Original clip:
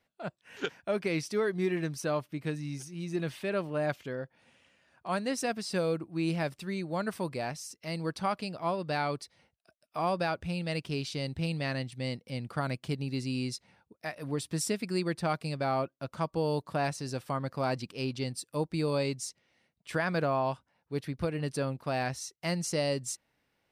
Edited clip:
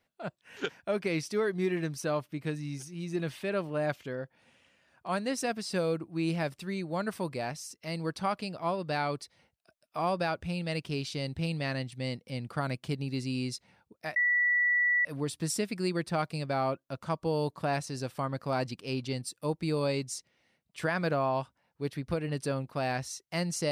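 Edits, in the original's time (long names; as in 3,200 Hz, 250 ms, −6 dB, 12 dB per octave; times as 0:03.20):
0:14.16: insert tone 1,950 Hz −23 dBFS 0.89 s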